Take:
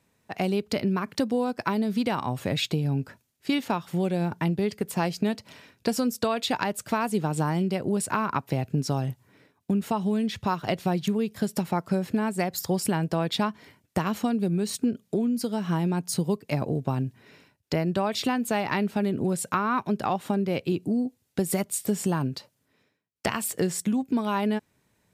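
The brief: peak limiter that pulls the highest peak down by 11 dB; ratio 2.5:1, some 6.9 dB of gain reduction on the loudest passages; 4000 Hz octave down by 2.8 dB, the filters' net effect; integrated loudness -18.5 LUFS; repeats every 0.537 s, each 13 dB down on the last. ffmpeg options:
-af "equalizer=f=4k:t=o:g=-3.5,acompressor=threshold=-32dB:ratio=2.5,alimiter=level_in=3dB:limit=-24dB:level=0:latency=1,volume=-3dB,aecho=1:1:537|1074|1611:0.224|0.0493|0.0108,volume=18dB"

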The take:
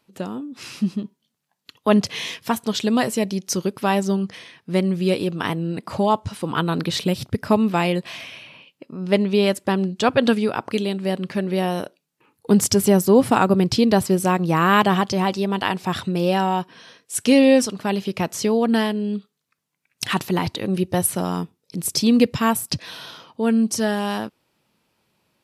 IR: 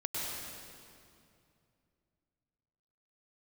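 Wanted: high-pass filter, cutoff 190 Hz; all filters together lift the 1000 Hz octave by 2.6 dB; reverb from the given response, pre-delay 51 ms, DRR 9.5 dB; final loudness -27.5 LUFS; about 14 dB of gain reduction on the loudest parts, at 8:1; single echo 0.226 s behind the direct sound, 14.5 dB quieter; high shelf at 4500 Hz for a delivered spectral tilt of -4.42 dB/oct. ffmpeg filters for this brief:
-filter_complex "[0:a]highpass=190,equalizer=f=1k:t=o:g=3.5,highshelf=f=4.5k:g=-4.5,acompressor=threshold=-25dB:ratio=8,aecho=1:1:226:0.188,asplit=2[a][b];[1:a]atrim=start_sample=2205,adelay=51[c];[b][c]afir=irnorm=-1:irlink=0,volume=-14dB[d];[a][d]amix=inputs=2:normalize=0,volume=2.5dB"

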